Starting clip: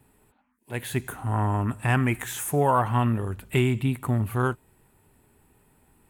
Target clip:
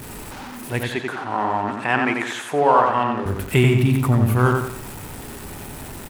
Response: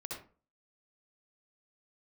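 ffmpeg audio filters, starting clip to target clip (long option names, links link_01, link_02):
-filter_complex "[0:a]aeval=exprs='val(0)+0.5*0.015*sgn(val(0))':channel_layout=same,asettb=1/sr,asplit=3[link_01][link_02][link_03];[link_01]atrim=end=0.834[link_04];[link_02]atrim=start=0.83:end=3.26,asetpts=PTS-STARTPTS,afade=type=in:duration=0.004:curve=qsin,afade=type=out:start_time=2.426:duration=0.004:curve=qsin,highpass=340,lowpass=4300[link_05];[link_03]atrim=start=3.256[link_06];[link_04][link_05]acrossfade=duration=0.004:curve1=hsin:curve2=qsin[link_07];[link_07][link_06]acrossfade=duration=0.004:curve1=qsin:curve2=hsin,asplit=2[link_08][link_09];[link_09]adelay=89,lowpass=frequency=3100:poles=1,volume=-3dB,asplit=2[link_10][link_11];[link_11]adelay=89,lowpass=frequency=3100:poles=1,volume=0.41,asplit=2[link_12][link_13];[link_13]adelay=89,lowpass=frequency=3100:poles=1,volume=0.41,asplit=2[link_14][link_15];[link_15]adelay=89,lowpass=frequency=3100:poles=1,volume=0.41,asplit=2[link_16][link_17];[link_17]adelay=89,lowpass=frequency=3100:poles=1,volume=0.41[link_18];[link_08][link_10][link_12][link_14][link_16][link_18]amix=inputs=6:normalize=0,volume=5.5dB"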